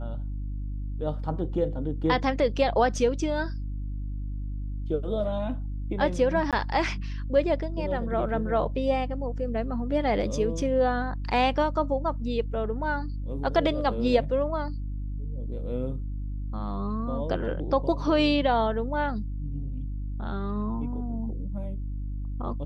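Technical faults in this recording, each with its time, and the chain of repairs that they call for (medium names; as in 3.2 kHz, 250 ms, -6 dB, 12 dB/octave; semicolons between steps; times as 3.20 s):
hum 50 Hz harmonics 6 -32 dBFS
6.51–6.53 s: dropout 17 ms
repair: de-hum 50 Hz, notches 6; interpolate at 6.51 s, 17 ms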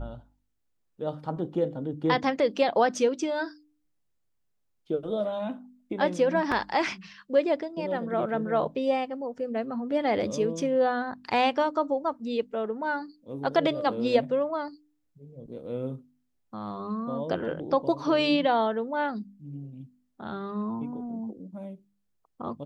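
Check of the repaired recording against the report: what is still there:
nothing left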